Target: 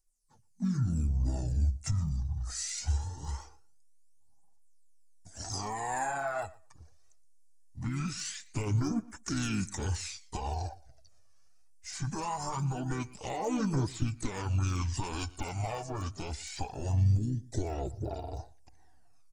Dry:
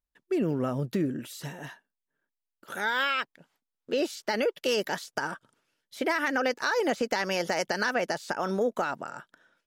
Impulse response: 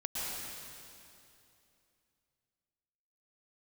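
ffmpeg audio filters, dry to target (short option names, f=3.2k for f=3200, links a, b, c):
-filter_complex "[0:a]flanger=delay=1.3:depth=4.2:regen=17:speed=1.7:shape=sinusoidal,alimiter=limit=-23.5dB:level=0:latency=1:release=29,asetrate=22050,aresample=44100,lowshelf=f=100:g=10,asplit=2[a][b];[b]asetrate=55563,aresample=44100,atempo=0.793701,volume=-10dB[c];[a][c]amix=inputs=2:normalize=0,asubboost=boost=6.5:cutoff=71,asplit=2[d][e];[e]acompressor=threshold=-30dB:ratio=6,volume=0dB[f];[d][f]amix=inputs=2:normalize=0,aecho=1:1:118|236:0.0891|0.0143,aphaser=in_gain=1:out_gain=1:delay=1.8:decay=0.5:speed=0.22:type=triangular,aexciter=amount=6:drive=8.4:freq=4.9k,volume=-9dB"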